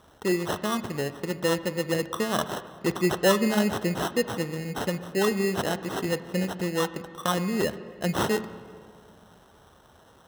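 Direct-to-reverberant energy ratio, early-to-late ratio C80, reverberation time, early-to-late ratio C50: 12.0 dB, 14.5 dB, 2.0 s, 13.5 dB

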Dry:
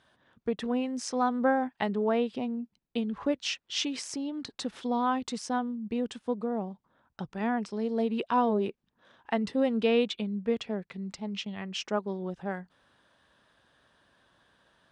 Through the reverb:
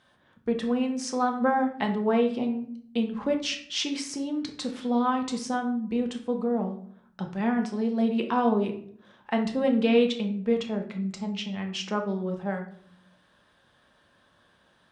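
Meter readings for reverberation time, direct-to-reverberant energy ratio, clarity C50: 0.60 s, 3.0 dB, 9.5 dB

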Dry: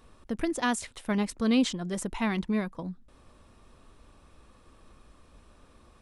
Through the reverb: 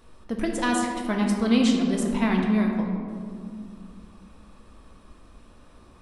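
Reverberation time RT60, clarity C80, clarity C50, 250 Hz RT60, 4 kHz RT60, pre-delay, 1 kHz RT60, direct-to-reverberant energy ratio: 2.3 s, 4.0 dB, 2.5 dB, 3.4 s, 1.1 s, 3 ms, 2.1 s, 0.0 dB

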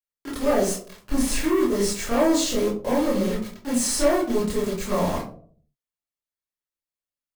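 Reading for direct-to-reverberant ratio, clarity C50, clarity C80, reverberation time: -9.0 dB, 4.5 dB, 10.5 dB, 0.50 s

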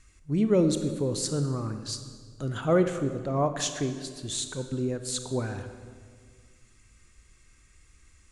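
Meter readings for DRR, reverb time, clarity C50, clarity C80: 8.0 dB, 1.8 s, 9.0 dB, 10.5 dB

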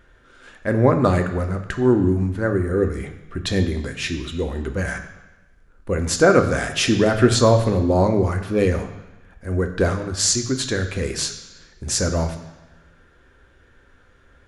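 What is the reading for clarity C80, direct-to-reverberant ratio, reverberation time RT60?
11.5 dB, 6.0 dB, 1.1 s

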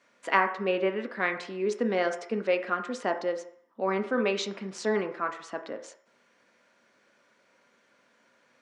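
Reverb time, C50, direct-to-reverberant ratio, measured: 0.60 s, 10.0 dB, 5.0 dB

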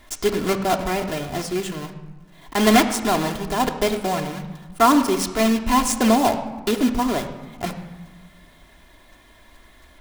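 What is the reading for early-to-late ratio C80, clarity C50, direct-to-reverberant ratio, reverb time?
11.5 dB, 10.0 dB, 3.0 dB, 1.2 s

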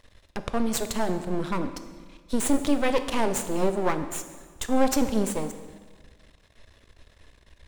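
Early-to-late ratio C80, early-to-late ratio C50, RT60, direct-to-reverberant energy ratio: 11.5 dB, 10.5 dB, 1.5 s, 9.0 dB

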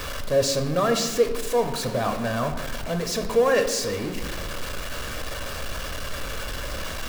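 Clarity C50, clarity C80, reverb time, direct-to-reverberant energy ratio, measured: 9.0 dB, 11.0 dB, 1.3 s, 5.5 dB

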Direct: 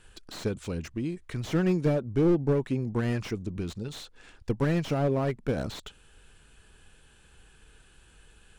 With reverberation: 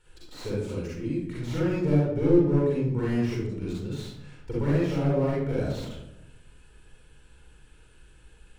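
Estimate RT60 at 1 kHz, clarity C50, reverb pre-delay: 0.75 s, -3.0 dB, 38 ms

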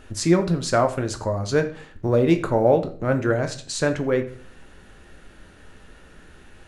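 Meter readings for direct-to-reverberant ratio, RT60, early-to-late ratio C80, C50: 6.0 dB, 0.45 s, 16.5 dB, 12.5 dB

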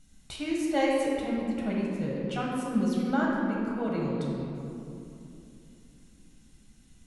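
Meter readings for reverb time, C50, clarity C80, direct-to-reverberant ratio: 2.8 s, -1.5 dB, 0.5 dB, -4.5 dB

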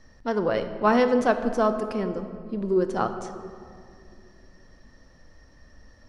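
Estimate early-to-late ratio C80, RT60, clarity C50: 11.0 dB, 2.3 s, 9.5 dB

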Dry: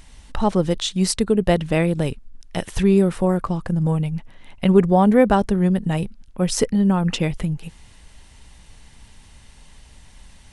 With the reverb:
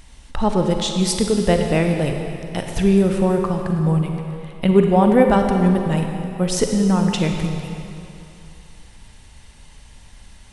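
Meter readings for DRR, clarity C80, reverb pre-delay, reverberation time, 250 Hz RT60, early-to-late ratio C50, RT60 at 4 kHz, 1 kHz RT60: 3.5 dB, 5.0 dB, 35 ms, 2.8 s, 2.6 s, 4.0 dB, 2.4 s, 2.9 s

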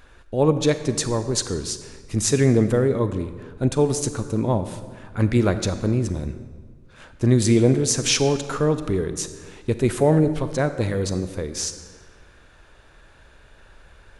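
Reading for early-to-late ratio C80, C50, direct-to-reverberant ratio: 12.0 dB, 11.0 dB, 10.5 dB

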